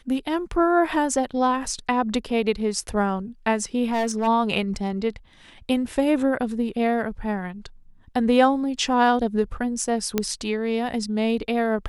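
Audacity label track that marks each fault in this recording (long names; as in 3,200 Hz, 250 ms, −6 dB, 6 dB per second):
3.840000	4.280000	clipping −19 dBFS
10.180000	10.180000	click −7 dBFS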